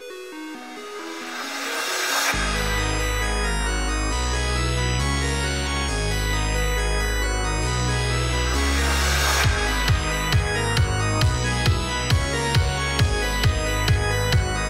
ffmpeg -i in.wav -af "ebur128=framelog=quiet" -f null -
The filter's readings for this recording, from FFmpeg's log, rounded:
Integrated loudness:
  I:         -22.2 LUFS
  Threshold: -32.5 LUFS
Loudness range:
  LRA:         2.5 LU
  Threshold: -42.3 LUFS
  LRA low:   -23.5 LUFS
  LRA high:  -20.9 LUFS